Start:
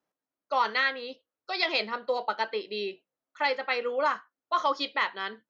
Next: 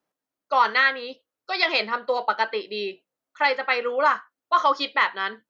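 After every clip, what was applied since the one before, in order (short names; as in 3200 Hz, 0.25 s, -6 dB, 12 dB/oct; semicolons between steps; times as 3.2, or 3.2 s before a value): dynamic EQ 1400 Hz, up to +5 dB, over -40 dBFS, Q 0.82; gain +3 dB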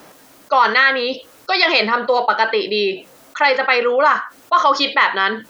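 fast leveller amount 50%; gain +4.5 dB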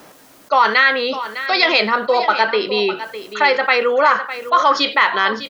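echo 0.605 s -12.5 dB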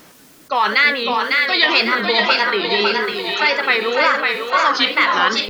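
bell 670 Hz -8 dB 1.8 oct; split-band echo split 520 Hz, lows 0.188 s, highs 0.553 s, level -3 dB; wow and flutter 130 cents; gain +1.5 dB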